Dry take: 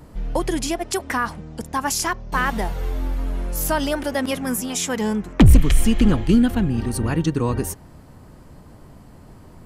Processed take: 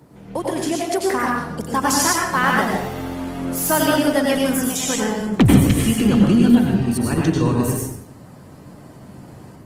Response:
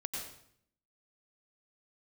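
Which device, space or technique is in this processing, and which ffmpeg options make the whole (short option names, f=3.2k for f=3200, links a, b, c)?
far-field microphone of a smart speaker: -filter_complex "[0:a]asplit=3[a][b][c];[a]afade=t=out:st=0.7:d=0.02[d];[b]adynamicequalizer=threshold=0.0126:dfrequency=440:dqfactor=1.3:tfrequency=440:tqfactor=1.3:attack=5:release=100:ratio=0.375:range=2.5:mode=boostabove:tftype=bell,afade=t=in:st=0.7:d=0.02,afade=t=out:st=1.8:d=0.02[e];[c]afade=t=in:st=1.8:d=0.02[f];[d][e][f]amix=inputs=3:normalize=0[g];[1:a]atrim=start_sample=2205[h];[g][h]afir=irnorm=-1:irlink=0,highpass=f=97:w=0.5412,highpass=f=97:w=1.3066,dynaudnorm=f=950:g=3:m=6dB" -ar 48000 -c:a libopus -b:a 20k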